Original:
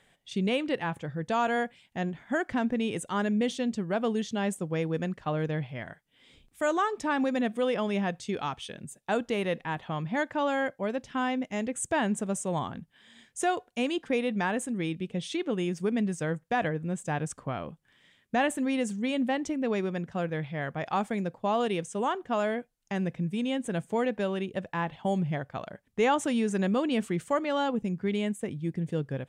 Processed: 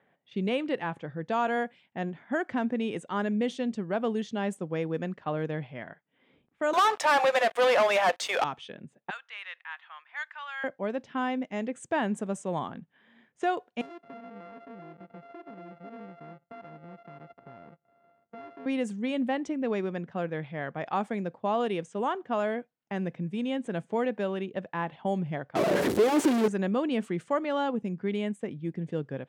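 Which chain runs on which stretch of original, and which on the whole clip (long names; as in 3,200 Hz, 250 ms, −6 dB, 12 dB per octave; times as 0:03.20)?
0:06.73–0:08.44: Butterworth high-pass 550 Hz 48 dB per octave + high-shelf EQ 7,800 Hz −5 dB + leveller curve on the samples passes 5
0:09.10–0:10.64: high-pass filter 1,300 Hz 24 dB per octave + high-shelf EQ 9,500 Hz +9 dB
0:13.81–0:18.66: samples sorted by size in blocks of 64 samples + downward compressor 3 to 1, threshold −46 dBFS + high-shelf EQ 4,300 Hz −12 dB
0:25.55–0:26.48: sign of each sample alone + parametric band 370 Hz +14.5 dB 0.86 octaves
whole clip: low-pass that shuts in the quiet parts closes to 1,700 Hz, open at −25 dBFS; high-pass filter 170 Hz 12 dB per octave; high-shelf EQ 4,000 Hz −9.5 dB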